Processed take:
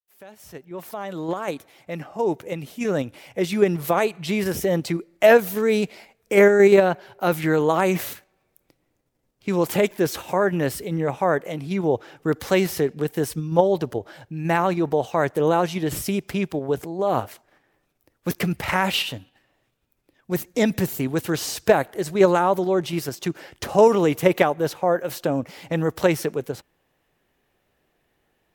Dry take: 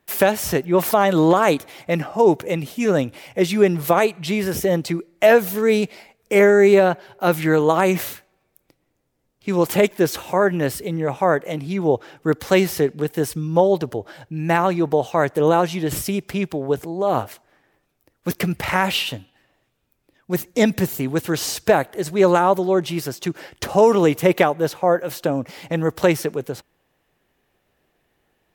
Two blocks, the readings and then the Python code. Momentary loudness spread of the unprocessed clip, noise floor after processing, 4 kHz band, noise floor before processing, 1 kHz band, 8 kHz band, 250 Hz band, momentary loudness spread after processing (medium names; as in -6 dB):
11 LU, -71 dBFS, -2.5 dB, -70 dBFS, -3.5 dB, -3.5 dB, -3.0 dB, 14 LU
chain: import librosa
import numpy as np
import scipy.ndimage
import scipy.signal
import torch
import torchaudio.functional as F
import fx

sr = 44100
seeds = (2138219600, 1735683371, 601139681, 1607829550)

p1 = fx.fade_in_head(x, sr, length_s=4.46)
p2 = fx.level_steps(p1, sr, step_db=12)
p3 = p1 + F.gain(torch.from_numpy(p2), 0.5).numpy()
y = F.gain(torch.from_numpy(p3), -6.0).numpy()